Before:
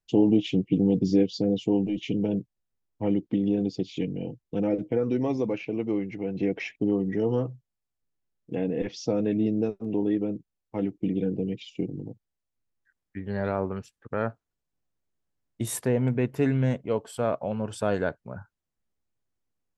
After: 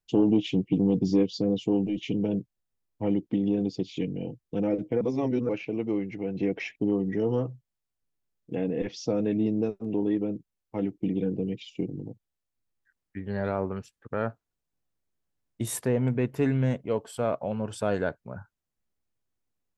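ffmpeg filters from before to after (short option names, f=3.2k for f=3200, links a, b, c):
-filter_complex "[0:a]asplit=3[a][b][c];[a]atrim=end=5.012[d];[b]atrim=start=5.008:end=5.492,asetpts=PTS-STARTPTS,areverse[e];[c]atrim=start=5.488[f];[d][e]acrossfade=d=0.004:c1=hsin:c2=hsin[g];[g][f]acrossfade=d=0.004:c1=hsin:c2=hsin,acontrast=75,volume=-7.5dB"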